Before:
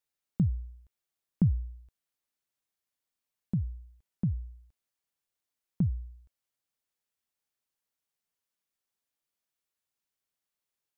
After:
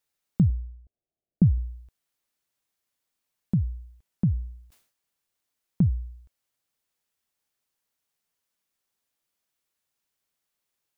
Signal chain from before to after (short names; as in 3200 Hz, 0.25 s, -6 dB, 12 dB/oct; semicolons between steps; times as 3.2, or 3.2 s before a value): 0.5–1.58 elliptic low-pass 720 Hz; 4.28–5.89 sustainer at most 110 dB/s; gain +6 dB